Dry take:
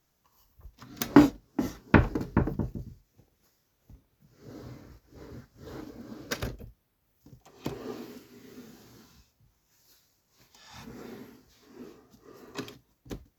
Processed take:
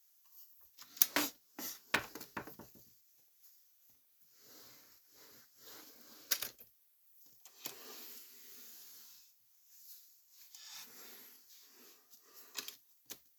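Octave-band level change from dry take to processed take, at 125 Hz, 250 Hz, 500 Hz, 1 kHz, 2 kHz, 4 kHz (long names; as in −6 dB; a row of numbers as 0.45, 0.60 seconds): −30.5, −25.0, −18.5, −13.0, −7.0, +1.0 decibels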